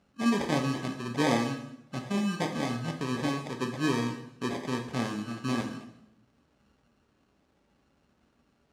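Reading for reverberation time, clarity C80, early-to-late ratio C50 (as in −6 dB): 0.80 s, 10.5 dB, 8.0 dB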